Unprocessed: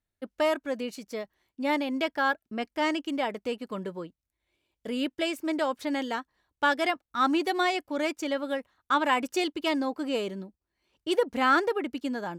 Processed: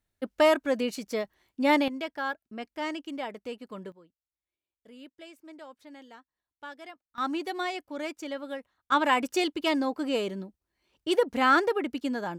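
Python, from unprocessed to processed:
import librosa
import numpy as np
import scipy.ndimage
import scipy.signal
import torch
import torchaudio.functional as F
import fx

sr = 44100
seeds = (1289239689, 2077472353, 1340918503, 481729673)

y = fx.gain(x, sr, db=fx.steps((0.0, 4.5), (1.88, -6.0), (3.92, -18.5), (7.18, -6.0), (8.92, 1.0)))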